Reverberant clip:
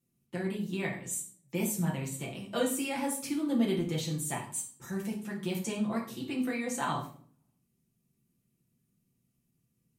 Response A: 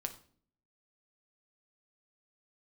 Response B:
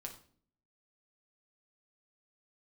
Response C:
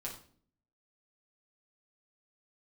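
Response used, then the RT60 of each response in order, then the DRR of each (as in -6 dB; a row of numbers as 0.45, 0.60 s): C; 0.50, 0.50, 0.50 s; 5.5, 1.5, -3.5 dB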